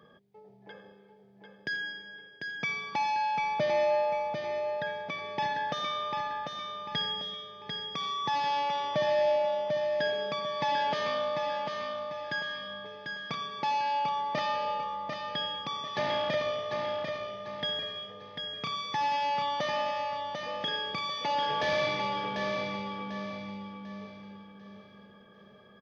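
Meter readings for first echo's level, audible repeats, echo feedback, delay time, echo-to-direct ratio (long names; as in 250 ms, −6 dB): −5.0 dB, 4, 37%, 745 ms, −4.5 dB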